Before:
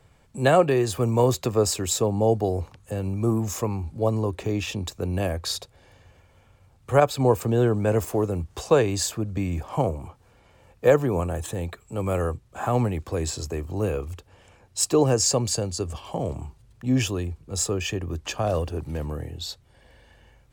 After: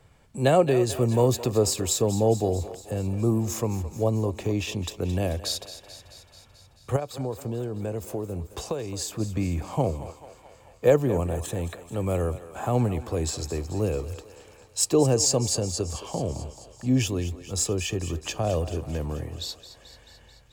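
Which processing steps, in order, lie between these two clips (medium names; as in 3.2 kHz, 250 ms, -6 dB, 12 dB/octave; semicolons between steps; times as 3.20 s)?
dynamic bell 1.4 kHz, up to -7 dB, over -41 dBFS, Q 1; 6.96–9.20 s: compression, threshold -28 dBFS, peak gain reduction 13.5 dB; thinning echo 218 ms, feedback 68%, high-pass 400 Hz, level -13 dB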